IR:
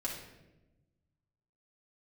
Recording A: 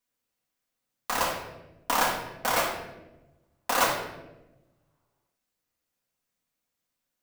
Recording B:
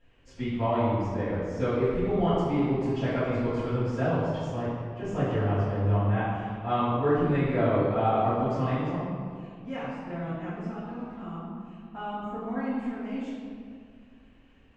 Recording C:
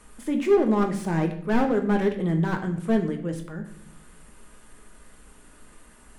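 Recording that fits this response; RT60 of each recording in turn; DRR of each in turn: A; 1.0, 2.1, 0.70 s; -4.5, -15.0, 3.5 dB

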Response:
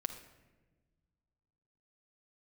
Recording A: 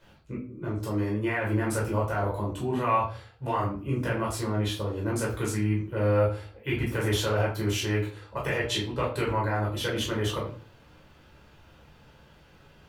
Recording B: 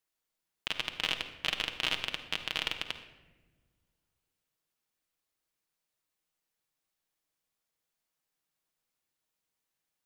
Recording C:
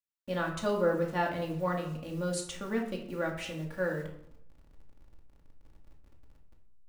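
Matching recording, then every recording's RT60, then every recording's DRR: B; 0.40, 1.3, 0.70 s; -5.0, 5.0, -1.0 dB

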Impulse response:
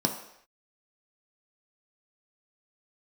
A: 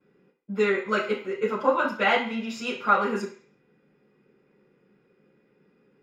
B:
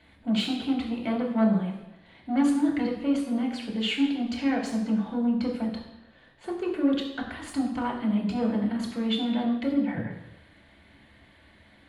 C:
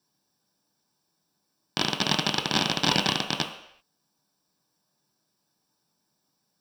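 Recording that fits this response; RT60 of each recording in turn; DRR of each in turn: C; 0.45 s, 0.95 s, not exponential; -13.0, -3.0, 2.5 dB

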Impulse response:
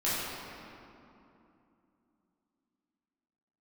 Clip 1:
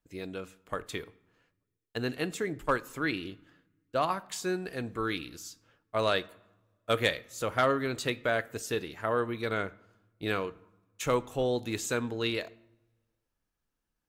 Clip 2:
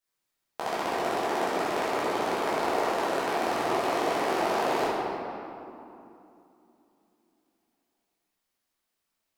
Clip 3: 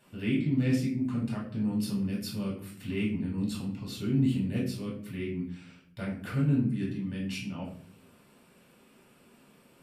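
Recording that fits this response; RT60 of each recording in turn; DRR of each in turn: 2; 1.2, 2.8, 0.55 s; 17.0, -11.0, -4.5 dB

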